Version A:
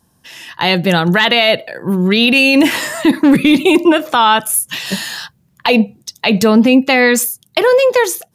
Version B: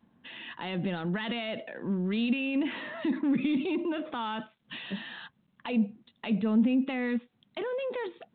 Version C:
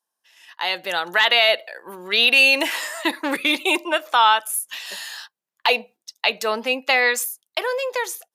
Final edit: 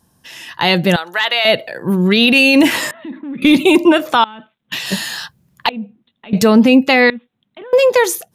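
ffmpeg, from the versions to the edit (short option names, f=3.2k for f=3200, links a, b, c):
-filter_complex "[1:a]asplit=4[a][b][c][d];[0:a]asplit=6[e][f][g][h][i][j];[e]atrim=end=0.962[k];[2:a]atrim=start=0.958:end=1.452[l];[f]atrim=start=1.448:end=2.912[m];[a]atrim=start=2.908:end=3.422[n];[g]atrim=start=3.418:end=4.242[o];[b]atrim=start=4.238:end=4.722[p];[h]atrim=start=4.718:end=5.692[q];[c]atrim=start=5.688:end=6.332[r];[i]atrim=start=6.328:end=7.102[s];[d]atrim=start=7.098:end=7.732[t];[j]atrim=start=7.728[u];[k][l]acrossfade=d=0.004:c1=hsin:c2=hsin[v];[v][m]acrossfade=d=0.004:c1=hsin:c2=hsin[w];[w][n]acrossfade=d=0.004:c1=hsin:c2=hsin[x];[x][o]acrossfade=d=0.004:c1=hsin:c2=hsin[y];[y][p]acrossfade=d=0.004:c1=hsin:c2=hsin[z];[z][q]acrossfade=d=0.004:c1=hsin:c2=hsin[aa];[aa][r]acrossfade=d=0.004:c1=hsin:c2=hsin[ab];[ab][s]acrossfade=d=0.004:c1=hsin:c2=hsin[ac];[ac][t]acrossfade=d=0.004:c1=hsin:c2=hsin[ad];[ad][u]acrossfade=d=0.004:c1=hsin:c2=hsin"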